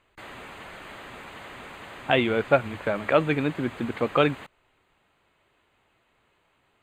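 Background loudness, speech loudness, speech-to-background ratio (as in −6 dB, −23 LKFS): −41.5 LKFS, −24.5 LKFS, 17.0 dB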